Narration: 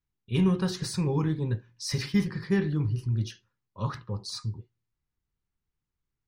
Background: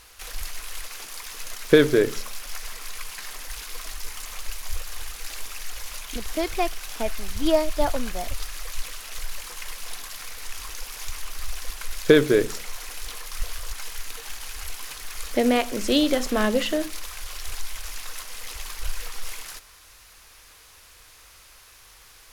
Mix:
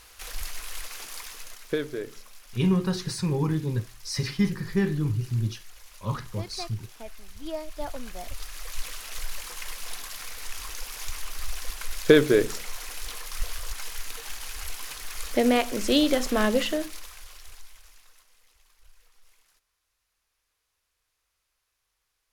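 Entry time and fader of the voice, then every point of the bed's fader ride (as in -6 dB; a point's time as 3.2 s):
2.25 s, +1.0 dB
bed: 1.2 s -1.5 dB
1.83 s -14.5 dB
7.49 s -14.5 dB
8.9 s -1 dB
16.61 s -1 dB
18.52 s -27.5 dB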